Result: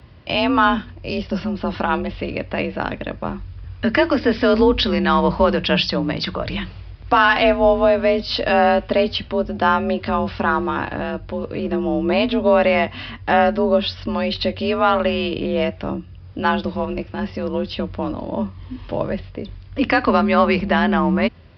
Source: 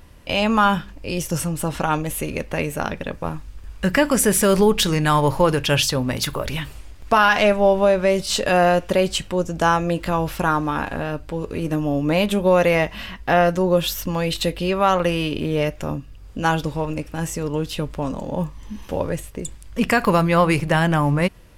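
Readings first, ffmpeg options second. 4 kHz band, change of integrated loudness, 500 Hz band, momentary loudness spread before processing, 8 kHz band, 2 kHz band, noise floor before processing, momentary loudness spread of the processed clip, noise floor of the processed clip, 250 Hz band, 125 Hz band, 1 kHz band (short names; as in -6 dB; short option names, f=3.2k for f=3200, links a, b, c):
+1.0 dB, +1.0 dB, +1.0 dB, 12 LU, under -25 dB, +1.5 dB, -41 dBFS, 12 LU, -39 dBFS, +2.0 dB, -4.5 dB, +1.5 dB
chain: -af "aresample=11025,aresample=44100,afreqshift=43,volume=1dB"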